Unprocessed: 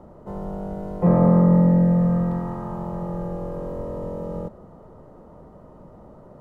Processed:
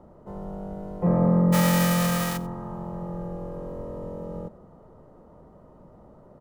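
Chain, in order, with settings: 1.52–2.36 spectral whitening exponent 0.3; on a send: echo 92 ms -20.5 dB; on the sum: gain -5 dB

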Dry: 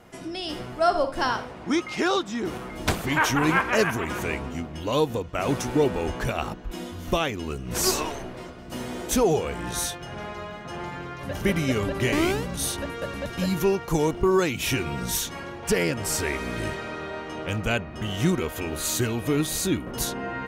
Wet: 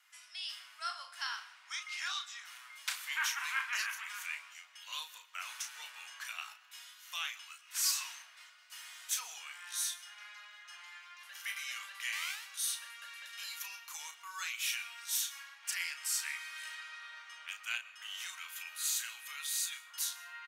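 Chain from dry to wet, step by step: Bessel high-pass 2000 Hz, order 6; doubler 34 ms -7 dB; reverb RT60 0.80 s, pre-delay 0.107 s, DRR 17.5 dB; gain -6.5 dB

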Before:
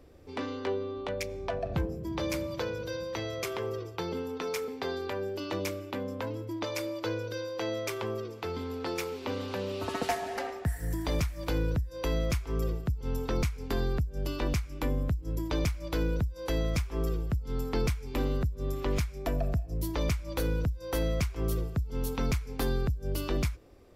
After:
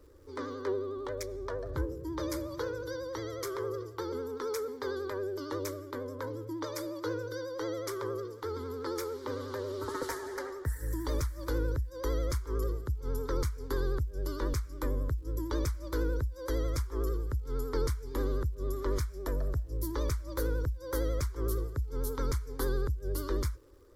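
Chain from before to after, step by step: fixed phaser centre 710 Hz, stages 6; vibrato 11 Hz 66 cents; crackle 270/s -59 dBFS

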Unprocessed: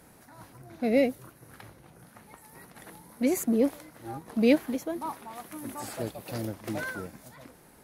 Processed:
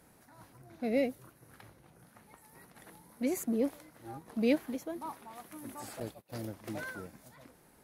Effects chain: 6–6.44 gate -38 dBFS, range -24 dB; gain -6.5 dB

